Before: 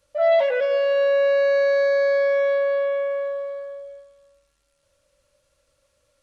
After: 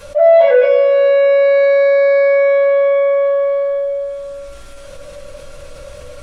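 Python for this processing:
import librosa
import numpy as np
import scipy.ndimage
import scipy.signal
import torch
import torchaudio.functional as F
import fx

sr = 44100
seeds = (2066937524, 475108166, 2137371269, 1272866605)

y = fx.high_shelf(x, sr, hz=3800.0, db=-7.0)
y = fx.room_shoebox(y, sr, seeds[0], volume_m3=240.0, walls='furnished', distance_m=5.2)
y = fx.env_flatten(y, sr, amount_pct=50)
y = y * librosa.db_to_amplitude(-3.5)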